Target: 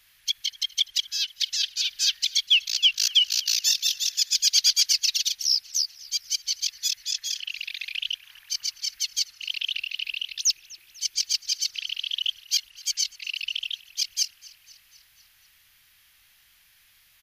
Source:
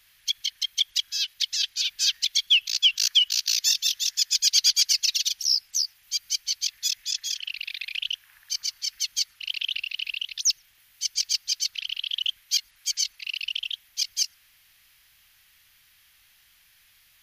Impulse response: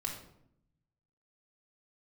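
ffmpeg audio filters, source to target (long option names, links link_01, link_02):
-filter_complex "[0:a]asettb=1/sr,asplit=3[link_01][link_02][link_03];[link_01]atrim=end=9.954[link_04];[link_02]atrim=start=9.95:end=12.21,asetpts=PTS-STARTPTS,afade=type=in:duration=0.004:curve=qsin,afade=type=out:start_time=2.256:duration=0.004:curve=qsin,equalizer=frequency=350:width_type=o:width=0.31:gain=12.5[link_05];[link_03]atrim=start=12.206[link_06];[link_04][link_05]acrossfade=duration=0.004:curve1=hsin:curve2=qsin[link_07];[link_07][link_06]acrossfade=duration=0.004:curve1=qsin:curve2=hsin,asplit=6[link_08][link_09][link_10][link_11][link_12][link_13];[link_09]adelay=247,afreqshift=-66,volume=-22dB[link_14];[link_10]adelay=494,afreqshift=-132,volume=-26.3dB[link_15];[link_11]adelay=741,afreqshift=-198,volume=-30.6dB[link_16];[link_12]adelay=988,afreqshift=-264,volume=-34.9dB[link_17];[link_13]adelay=1235,afreqshift=-330,volume=-39.2dB[link_18];[link_08][link_14][link_15][link_16][link_17][link_18]amix=inputs=6:normalize=0"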